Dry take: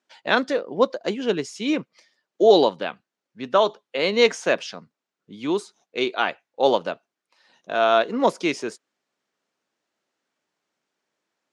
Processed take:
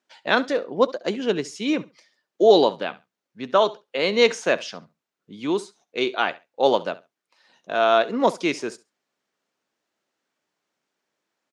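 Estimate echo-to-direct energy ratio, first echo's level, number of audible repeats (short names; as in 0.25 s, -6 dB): -19.0 dB, -19.0 dB, 2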